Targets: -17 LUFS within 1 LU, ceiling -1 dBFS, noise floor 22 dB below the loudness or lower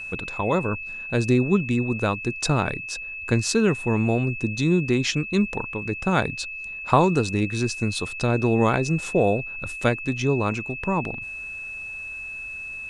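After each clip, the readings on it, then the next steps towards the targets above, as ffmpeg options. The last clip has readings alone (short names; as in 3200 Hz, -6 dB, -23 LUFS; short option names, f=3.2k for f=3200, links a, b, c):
steady tone 2600 Hz; tone level -32 dBFS; loudness -24.0 LUFS; peak -3.5 dBFS; loudness target -17.0 LUFS
-> -af "bandreject=f=2.6k:w=30"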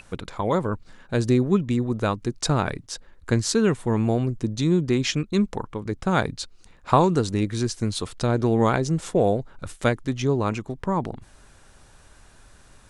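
steady tone none; loudness -24.0 LUFS; peak -3.5 dBFS; loudness target -17.0 LUFS
-> -af "volume=7dB,alimiter=limit=-1dB:level=0:latency=1"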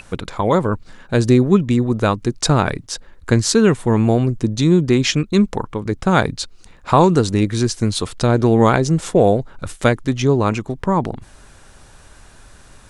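loudness -17.0 LUFS; peak -1.0 dBFS; noise floor -46 dBFS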